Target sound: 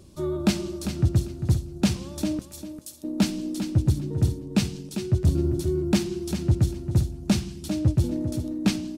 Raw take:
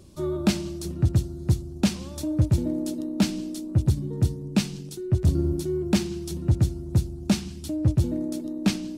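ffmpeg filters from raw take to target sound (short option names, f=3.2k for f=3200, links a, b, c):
-filter_complex "[0:a]asettb=1/sr,asplit=3[a][b][c];[a]atrim=end=2.394[d];[b]atrim=start=2.39:end=3.04,asetpts=PTS-STARTPTS,afade=t=in:d=0.004:c=qsin,afade=t=out:st=0.646:d=0.004:c=qsin,aderivative[e];[c]atrim=start=3.036[f];[d][e]acrossfade=d=0.004:c1=hsin:c2=qsin[g];[g][f]acrossfade=d=0.004:c1=qsin:c2=hsin,aecho=1:1:398|796|1194:0.335|0.0636|0.0121"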